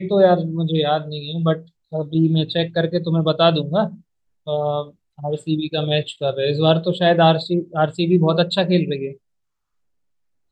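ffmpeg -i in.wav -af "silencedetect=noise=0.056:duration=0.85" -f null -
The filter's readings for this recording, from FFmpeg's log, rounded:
silence_start: 9.09
silence_end: 10.51 | silence_duration: 1.42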